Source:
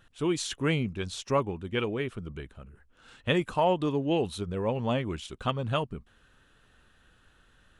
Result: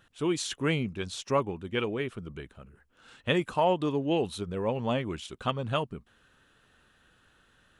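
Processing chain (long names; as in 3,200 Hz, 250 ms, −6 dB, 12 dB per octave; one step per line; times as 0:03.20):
low-shelf EQ 60 Hz −12 dB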